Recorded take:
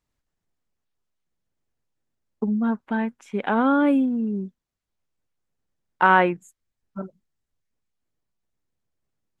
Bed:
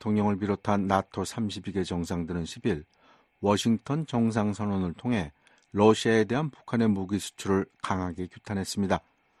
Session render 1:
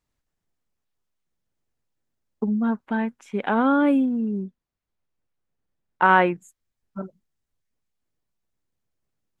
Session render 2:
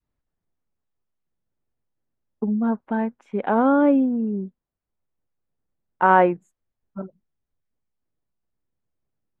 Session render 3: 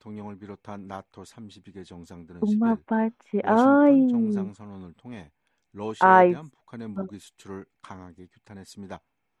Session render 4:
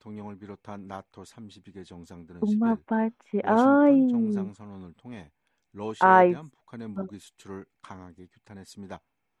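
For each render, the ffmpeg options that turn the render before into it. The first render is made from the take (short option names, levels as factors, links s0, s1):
-filter_complex "[0:a]asettb=1/sr,asplit=3[s0][s1][s2];[s0]atrim=end=4.434[s3];[s1]atrim=start=4.43:end=6.09,asetpts=PTS-STARTPTS,afade=t=in:d=0.004:c=qsin,afade=t=out:st=1.656:d=0.004:c=qsin,lowpass=f=3200:p=1[s4];[s2]atrim=start=6.086[s5];[s3][s4]acrossfade=d=0.004:c1=hsin:c2=qsin[s6];[s6][s5]acrossfade=d=0.004:c1=qsin:c2=hsin"
-af "lowpass=f=1200:p=1,adynamicequalizer=threshold=0.0251:dfrequency=620:dqfactor=0.93:tfrequency=620:tqfactor=0.93:attack=5:release=100:ratio=0.375:range=3:mode=boostabove:tftype=bell"
-filter_complex "[1:a]volume=0.224[s0];[0:a][s0]amix=inputs=2:normalize=0"
-af "volume=0.841"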